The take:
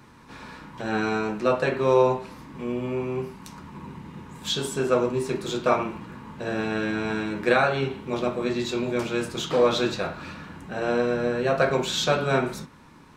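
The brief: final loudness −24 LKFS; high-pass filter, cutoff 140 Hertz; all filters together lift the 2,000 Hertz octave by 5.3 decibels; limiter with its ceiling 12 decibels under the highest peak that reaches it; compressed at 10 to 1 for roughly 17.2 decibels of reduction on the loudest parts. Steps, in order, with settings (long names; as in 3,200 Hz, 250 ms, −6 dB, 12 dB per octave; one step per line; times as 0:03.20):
high-pass filter 140 Hz
parametric band 2,000 Hz +7.5 dB
downward compressor 10 to 1, threshold −32 dBFS
level +16.5 dB
brickwall limiter −14.5 dBFS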